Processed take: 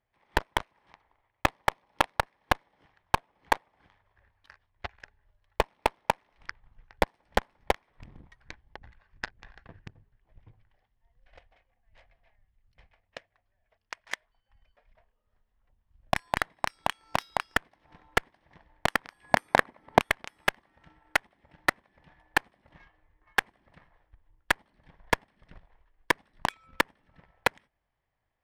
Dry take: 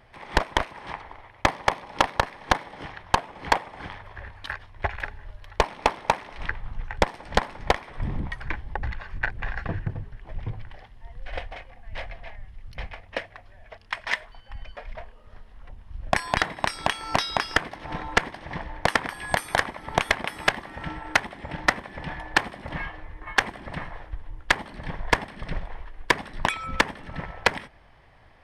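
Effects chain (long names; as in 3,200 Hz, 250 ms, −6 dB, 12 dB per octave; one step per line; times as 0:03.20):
loose part that buzzes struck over −21 dBFS, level −20 dBFS
harmonic generator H 3 −10 dB, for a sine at −7.5 dBFS
0:19.24–0:20.00: octave-band graphic EQ 125/250/500/1,000/2,000 Hz +4/+9/+7/+4/+4 dB
level −1 dB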